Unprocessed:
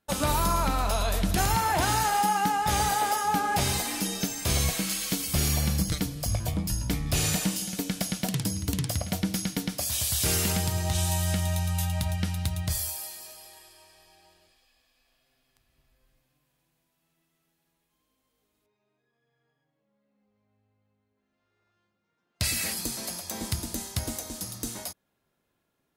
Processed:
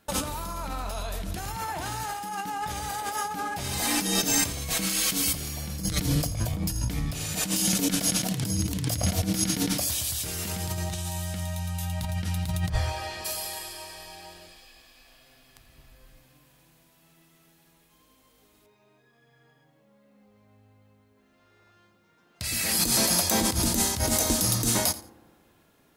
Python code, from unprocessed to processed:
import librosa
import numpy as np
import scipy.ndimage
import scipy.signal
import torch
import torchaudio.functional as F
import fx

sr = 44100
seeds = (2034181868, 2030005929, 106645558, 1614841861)

y = fx.lowpass(x, sr, hz=fx.line((12.68, 1700.0), (13.24, 3100.0)), slope=12, at=(12.68, 13.24), fade=0.02)
y = fx.over_compress(y, sr, threshold_db=-36.0, ratio=-1.0)
y = fx.echo_feedback(y, sr, ms=85, feedback_pct=21, wet_db=-17.5)
y = fx.rev_fdn(y, sr, rt60_s=1.6, lf_ratio=1.0, hf_ratio=0.3, size_ms=19.0, drr_db=18.0)
y = y * librosa.db_to_amplitude(7.0)